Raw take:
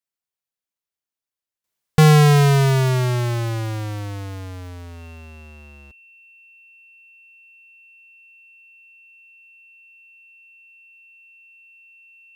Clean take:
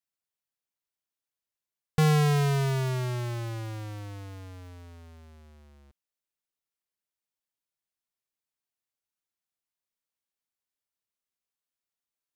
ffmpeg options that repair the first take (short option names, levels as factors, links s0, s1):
-af "bandreject=f=2700:w=30,asetnsamples=n=441:p=0,asendcmd='1.64 volume volume -10.5dB',volume=1"